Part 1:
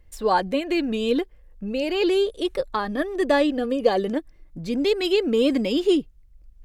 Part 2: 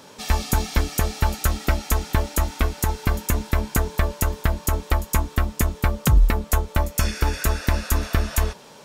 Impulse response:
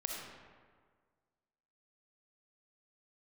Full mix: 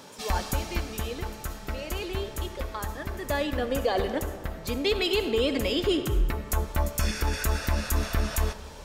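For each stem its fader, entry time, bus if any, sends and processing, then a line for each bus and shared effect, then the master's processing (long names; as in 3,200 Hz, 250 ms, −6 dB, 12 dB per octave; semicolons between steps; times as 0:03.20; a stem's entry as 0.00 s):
0:03.23 −13.5 dB → 0:03.61 −3 dB, 0.00 s, send −5.5 dB, meter weighting curve A
−2.0 dB, 0.00 s, send −15 dB, automatic ducking −18 dB, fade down 1.25 s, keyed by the first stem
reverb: on, RT60 1.7 s, pre-delay 20 ms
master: brickwall limiter −15.5 dBFS, peak gain reduction 8 dB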